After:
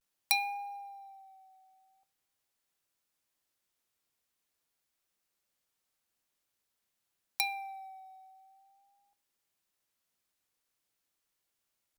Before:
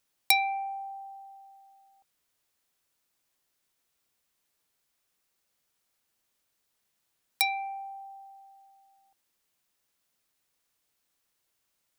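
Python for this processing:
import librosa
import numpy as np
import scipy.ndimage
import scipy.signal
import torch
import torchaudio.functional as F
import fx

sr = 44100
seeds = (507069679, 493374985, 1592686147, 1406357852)

y = fx.rev_double_slope(x, sr, seeds[0], early_s=0.51, late_s=2.2, knee_db=-18, drr_db=16.5)
y = fx.vibrato(y, sr, rate_hz=0.46, depth_cents=54.0)
y = F.gain(torch.from_numpy(y), -5.5).numpy()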